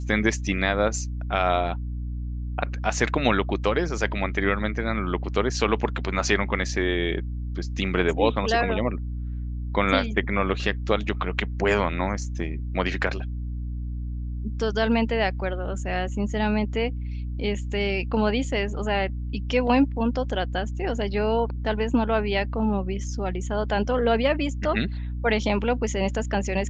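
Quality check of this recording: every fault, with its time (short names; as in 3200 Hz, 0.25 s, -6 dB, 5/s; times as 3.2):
hum 60 Hz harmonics 5 -30 dBFS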